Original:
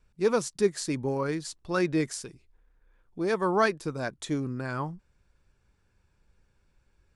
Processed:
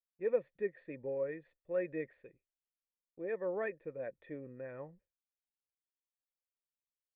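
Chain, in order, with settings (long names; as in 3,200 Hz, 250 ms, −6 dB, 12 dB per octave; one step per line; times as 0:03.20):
formant resonators in series e
downward expander −60 dBFS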